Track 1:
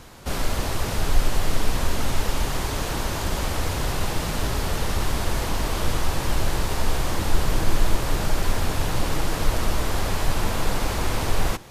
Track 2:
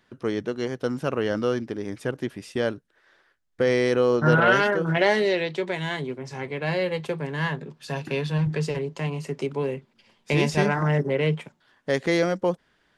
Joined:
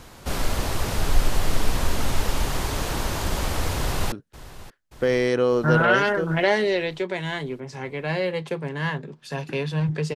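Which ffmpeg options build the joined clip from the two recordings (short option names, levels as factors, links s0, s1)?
-filter_complex "[0:a]apad=whole_dur=10.15,atrim=end=10.15,atrim=end=4.122[s0];[1:a]atrim=start=2.698:end=8.73[s1];[s0][s1]acrossfade=d=0.004:c1=hsin:c2=hsin,asplit=2[s2][s3];[s3]afade=t=in:st=3.75:d=0.01,afade=t=out:st=4.12:d=0.01,aecho=0:1:580|1160|1740|2320|2900|3480|4060:0.141254|0.0918149|0.0596797|0.0387918|0.0252147|0.0163895|0.0106532[s4];[s2][s4]amix=inputs=2:normalize=0"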